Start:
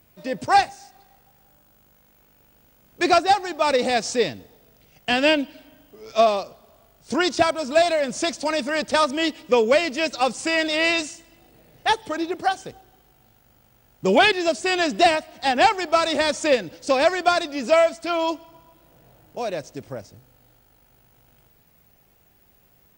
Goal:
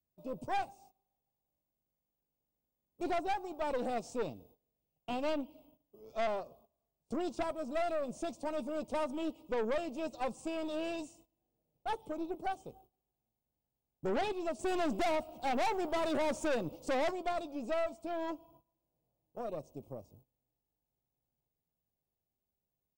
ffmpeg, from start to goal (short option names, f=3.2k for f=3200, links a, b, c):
-filter_complex "[0:a]asettb=1/sr,asplit=3[a][b][c];[a]atrim=end=14.594[d];[b]atrim=start=14.59:end=17.11,asetpts=PTS-STARTPTS,afade=t=in:d=0.004:c=qsin,afade=t=out:st=2.516:d=0.004:c=qsin,acontrast=85[e];[c]atrim=start=17.106[f];[d][e]acrossfade=d=0.004:c1=hsin:c2=qsin[g];[g][f]acrossfade=d=0.004:c1=qsin:c2=hsin,asuperstop=centerf=1700:order=4:qfactor=0.95,equalizer=f=4.7k:t=o:w=1.9:g=-15,asplit=2[h][i];[i]adelay=13,volume=-13dB[j];[h][j]amix=inputs=2:normalize=0,adynamicequalizer=threshold=0.0251:dfrequency=1800:dqfactor=0.89:tfrequency=1800:tqfactor=0.89:attack=5:release=100:ratio=0.375:range=2:mode=boostabove:tftype=bell,aeval=exprs='(tanh(11.2*val(0)+0.55)-tanh(0.55))/11.2':c=same,agate=range=-18dB:threshold=-52dB:ratio=16:detection=peak,volume=-9dB"